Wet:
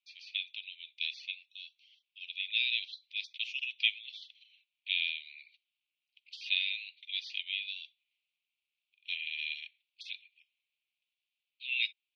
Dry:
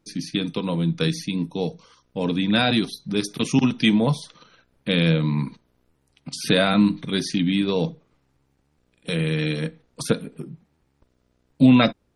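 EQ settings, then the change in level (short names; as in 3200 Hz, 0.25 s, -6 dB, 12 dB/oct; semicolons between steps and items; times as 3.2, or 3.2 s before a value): steep high-pass 2400 Hz 72 dB/oct; LPF 3300 Hz 24 dB/oct; air absorption 56 m; 0.0 dB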